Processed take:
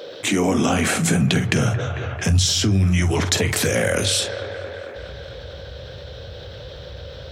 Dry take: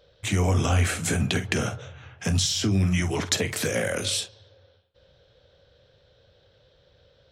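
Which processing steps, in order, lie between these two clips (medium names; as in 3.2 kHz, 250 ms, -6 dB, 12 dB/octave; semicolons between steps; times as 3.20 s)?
high-pass sweep 310 Hz -> 60 Hz, 0.06–2.76 s; on a send: feedback echo behind a band-pass 223 ms, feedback 59%, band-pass 820 Hz, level -12 dB; on the sum: level flattener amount 50%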